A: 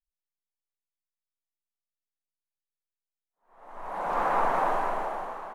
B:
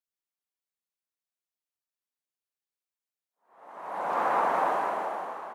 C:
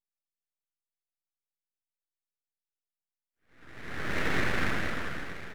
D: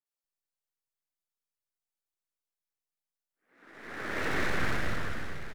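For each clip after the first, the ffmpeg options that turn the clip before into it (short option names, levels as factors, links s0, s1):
-af "highpass=190"
-af "aeval=exprs='abs(val(0))':c=same"
-filter_complex "[0:a]acrossover=split=200|2700[s0][s1][s2];[s2]adelay=60[s3];[s0]adelay=240[s4];[s4][s1][s3]amix=inputs=3:normalize=0"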